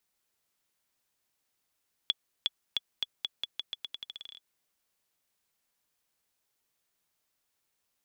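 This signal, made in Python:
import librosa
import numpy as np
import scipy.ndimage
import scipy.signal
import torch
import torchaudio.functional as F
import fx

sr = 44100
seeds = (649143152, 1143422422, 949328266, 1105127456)

y = fx.bouncing_ball(sr, first_gap_s=0.36, ratio=0.85, hz=3400.0, decay_ms=31.0, level_db=-13.0)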